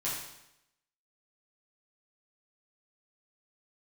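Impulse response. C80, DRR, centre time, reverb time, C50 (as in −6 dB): 4.5 dB, −8.5 dB, 57 ms, 0.85 s, 1.5 dB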